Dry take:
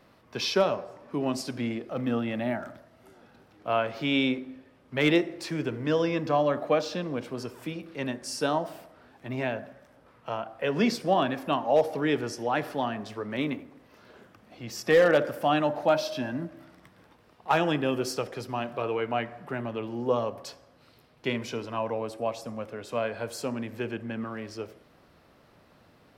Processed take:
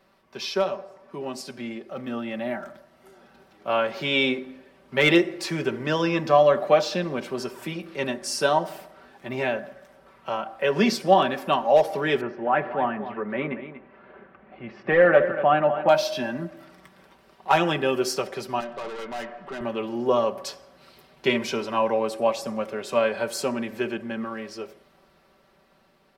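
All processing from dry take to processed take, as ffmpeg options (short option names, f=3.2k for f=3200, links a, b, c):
-filter_complex "[0:a]asettb=1/sr,asplit=3[a][b][c];[a]atrim=end=12.214[d];[b]atrim=start=12.21:end=15.89,asetpts=PTS-STARTPTS,afade=t=in:d=0.004:c=qsin,afade=t=out:st=3.676:d=0.004:c=qsin,lowpass=f=2.3k:w=0.5412,lowpass=f=2.3k:w=1.3066,aecho=1:1:238:0.251,atrim=end_sample=162288[e];[c]atrim=start=15.886[f];[d][e]acrossfade=d=0.004:c1=hsin:c2=qsin[g];[g][f]acrossfade=d=0.004:c1=qsin:c2=hsin,asettb=1/sr,asplit=3[h][i][j];[h]atrim=end=18.604[k];[i]atrim=start=18.6:end=19.61,asetpts=PTS-STARTPTS,afade=t=in:d=0.004:c=qsin,afade=t=out:st=1.006:d=0.004:c=qsin,highpass=200,lowpass=4.9k,aeval=exprs='(tanh(56.2*val(0)+0.2)-tanh(0.2))/56.2':c=same,bandreject=f=2.3k:w=21[l];[j]atrim=start=19.606[m];[k][l]acrossfade=d=0.004:c1=hsin:c2=qsin[n];[n][m]acrossfade=d=0.004:c1=qsin:c2=hsin,equalizer=f=120:w=0.57:g=-5.5,aecho=1:1:5.2:0.64,dynaudnorm=f=520:g=11:m=11.5dB,volume=-3.5dB"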